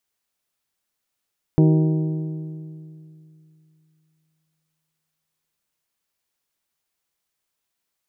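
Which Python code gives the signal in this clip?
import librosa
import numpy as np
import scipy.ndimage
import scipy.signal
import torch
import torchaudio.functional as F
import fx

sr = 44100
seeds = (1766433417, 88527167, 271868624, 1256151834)

y = fx.strike_metal(sr, length_s=4.86, level_db=-11.5, body='bell', hz=157.0, decay_s=2.88, tilt_db=5.0, modes=7)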